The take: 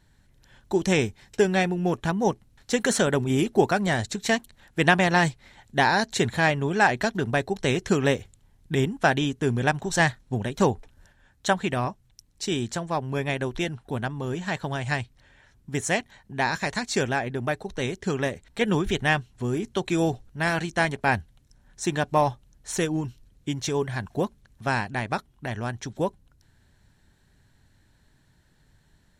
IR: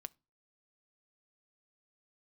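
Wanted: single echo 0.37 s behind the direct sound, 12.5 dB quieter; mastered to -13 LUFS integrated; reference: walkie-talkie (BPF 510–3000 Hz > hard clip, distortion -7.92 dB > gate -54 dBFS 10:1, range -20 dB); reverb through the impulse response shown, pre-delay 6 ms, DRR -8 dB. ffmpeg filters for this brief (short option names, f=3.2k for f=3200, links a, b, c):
-filter_complex "[0:a]aecho=1:1:370:0.237,asplit=2[a][b];[1:a]atrim=start_sample=2205,adelay=6[c];[b][c]afir=irnorm=-1:irlink=0,volume=13dB[d];[a][d]amix=inputs=2:normalize=0,highpass=510,lowpass=3k,asoftclip=type=hard:threshold=-13.5dB,agate=range=-20dB:threshold=-54dB:ratio=10,volume=10dB"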